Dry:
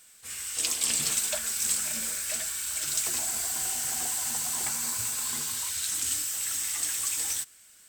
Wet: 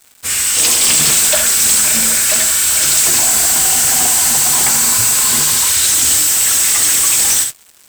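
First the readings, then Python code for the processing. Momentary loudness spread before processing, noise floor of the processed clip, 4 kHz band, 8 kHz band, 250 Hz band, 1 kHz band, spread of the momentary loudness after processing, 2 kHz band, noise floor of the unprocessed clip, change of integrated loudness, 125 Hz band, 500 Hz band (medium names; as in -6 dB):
4 LU, -46 dBFS, +18.0 dB, +18.0 dB, +18.5 dB, +19.0 dB, 1 LU, +19.0 dB, -55 dBFS, +18.0 dB, +19.0 dB, +18.5 dB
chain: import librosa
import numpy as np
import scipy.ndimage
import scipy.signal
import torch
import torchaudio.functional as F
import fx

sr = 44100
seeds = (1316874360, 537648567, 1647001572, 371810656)

y = fx.room_early_taps(x, sr, ms=(66, 80), db=(-11.0, -16.0))
y = fx.leveller(y, sr, passes=5)
y = y * 10.0 ** (4.0 / 20.0)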